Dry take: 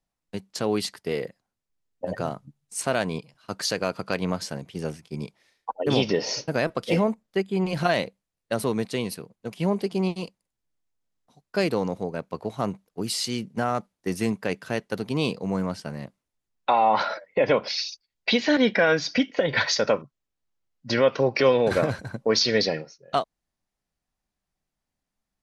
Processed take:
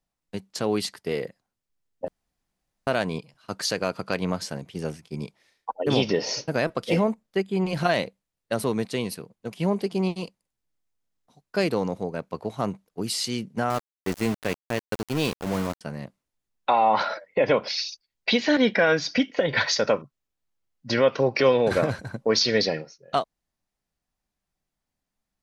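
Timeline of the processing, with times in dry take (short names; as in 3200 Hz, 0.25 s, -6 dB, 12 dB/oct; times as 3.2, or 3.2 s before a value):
2.08–2.87 room tone
13.7–15.81 sample gate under -28.5 dBFS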